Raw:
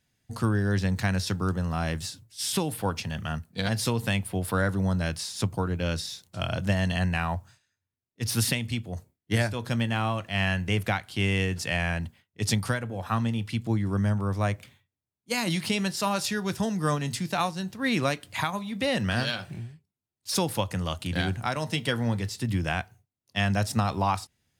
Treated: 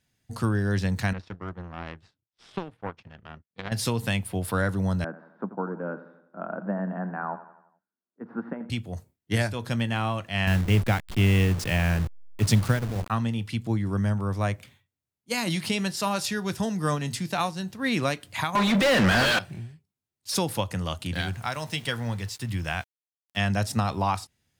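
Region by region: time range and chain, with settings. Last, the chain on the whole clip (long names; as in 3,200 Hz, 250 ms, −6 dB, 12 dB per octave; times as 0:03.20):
0:01.13–0:03.72: power curve on the samples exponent 2 + low-pass filter 2,500 Hz
0:05.04–0:08.70: Chebyshev band-pass filter 190–1,500 Hz, order 4 + repeating echo 86 ms, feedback 51%, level −14 dB
0:10.47–0:13.10: hold until the input has moved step −32.5 dBFS + low-shelf EQ 270 Hz +8 dB
0:18.55–0:19.39: mid-hump overdrive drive 38 dB, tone 2,100 Hz, clips at −12.5 dBFS + multiband upward and downward expander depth 40%
0:21.14–0:23.37: parametric band 300 Hz −6.5 dB 2 octaves + centre clipping without the shift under −45 dBFS
whole clip: no processing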